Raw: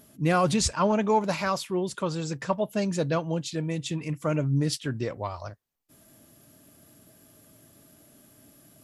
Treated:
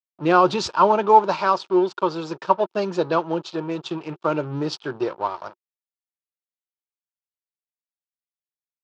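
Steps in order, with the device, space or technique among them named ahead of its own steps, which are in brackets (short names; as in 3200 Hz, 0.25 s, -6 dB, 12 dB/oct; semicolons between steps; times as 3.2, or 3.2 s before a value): blown loudspeaker (crossover distortion -41.5 dBFS; speaker cabinet 240–4900 Hz, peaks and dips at 250 Hz -10 dB, 360 Hz +9 dB, 920 Hz +9 dB, 1300 Hz +6 dB, 2000 Hz -9 dB); gain +5 dB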